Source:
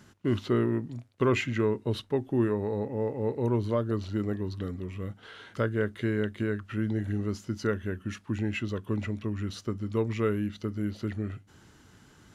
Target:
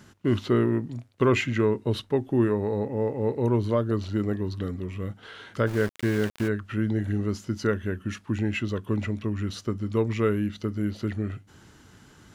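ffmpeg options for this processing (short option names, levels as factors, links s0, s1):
-filter_complex "[0:a]asplit=3[s0][s1][s2];[s0]afade=t=out:st=5.66:d=0.02[s3];[s1]aeval=exprs='val(0)*gte(abs(val(0)),0.0158)':c=same,afade=t=in:st=5.66:d=0.02,afade=t=out:st=6.47:d=0.02[s4];[s2]afade=t=in:st=6.47:d=0.02[s5];[s3][s4][s5]amix=inputs=3:normalize=0,volume=1.5"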